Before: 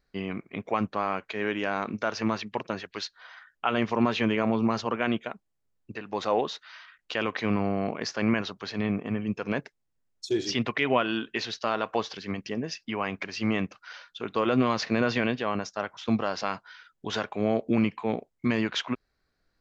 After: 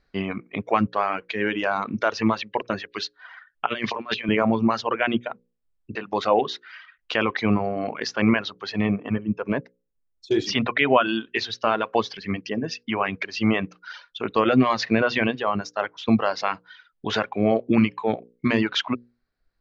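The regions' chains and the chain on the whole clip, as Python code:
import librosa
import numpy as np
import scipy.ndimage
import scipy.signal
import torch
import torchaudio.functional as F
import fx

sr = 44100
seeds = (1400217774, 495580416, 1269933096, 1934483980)

y = fx.chain(x, sr, fx.tilt_eq(slope=3.0),
    fx.over_compress(threshold_db=-32.0, ratio=-0.5),
    fx.cheby1_bandpass(low_hz=110.0, high_hz=4400.0, order=2), at=(3.66, 4.29))
y = fx.chain(y, sr, fx.lowpass(hz=1200.0, slope=6),
    fx.notch(hz=750.0, q=9.7), at=(9.18, 10.31))
y = scipy.signal.sosfilt(scipy.signal.butter(2, 4800.0, 'lowpass', fs=sr, output='sos'), y)
y = fx.hum_notches(y, sr, base_hz=60, count=9)
y = fx.dereverb_blind(y, sr, rt60_s=1.4)
y = F.gain(torch.from_numpy(y), 7.0).numpy()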